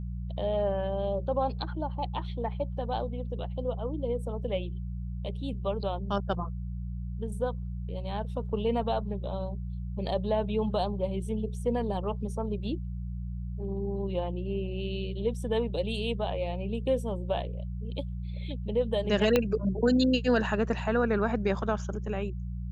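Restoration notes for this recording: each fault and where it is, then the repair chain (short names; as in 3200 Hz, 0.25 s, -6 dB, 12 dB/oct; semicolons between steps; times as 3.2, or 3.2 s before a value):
hum 60 Hz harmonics 3 -35 dBFS
19.36 pop -10 dBFS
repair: de-click; de-hum 60 Hz, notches 3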